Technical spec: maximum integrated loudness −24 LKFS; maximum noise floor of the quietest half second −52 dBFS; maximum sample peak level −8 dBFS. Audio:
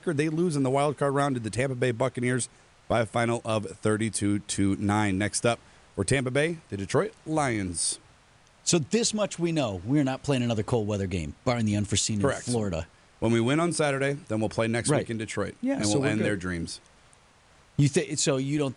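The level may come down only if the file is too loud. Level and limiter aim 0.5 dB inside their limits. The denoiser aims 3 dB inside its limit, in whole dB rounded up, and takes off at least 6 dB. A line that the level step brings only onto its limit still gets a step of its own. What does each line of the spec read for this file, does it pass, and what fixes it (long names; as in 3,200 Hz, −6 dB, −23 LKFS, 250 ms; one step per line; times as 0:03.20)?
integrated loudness −27.0 LKFS: in spec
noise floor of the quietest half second −58 dBFS: in spec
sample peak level −12.0 dBFS: in spec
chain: no processing needed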